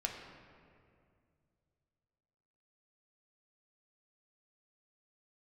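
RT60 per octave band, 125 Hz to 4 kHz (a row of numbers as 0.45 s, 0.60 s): 3.3 s, 2.7 s, 2.5 s, 2.1 s, 1.9 s, 1.4 s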